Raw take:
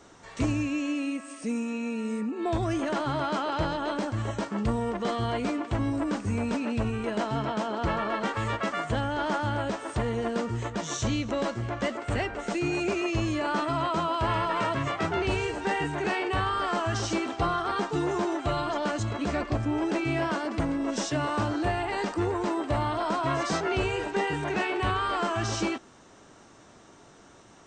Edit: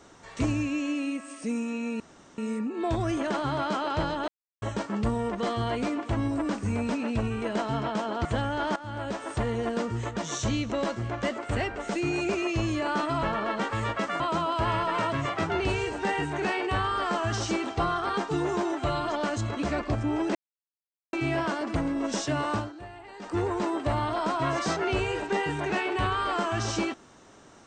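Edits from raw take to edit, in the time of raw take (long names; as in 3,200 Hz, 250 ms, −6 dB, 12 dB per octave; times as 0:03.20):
0:02.00: splice in room tone 0.38 s
0:03.90–0:04.24: silence
0:07.87–0:08.84: move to 0:13.82
0:09.35–0:09.82: fade in, from −16.5 dB
0:19.97: splice in silence 0.78 s
0:21.37–0:22.22: duck −15.5 dB, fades 0.19 s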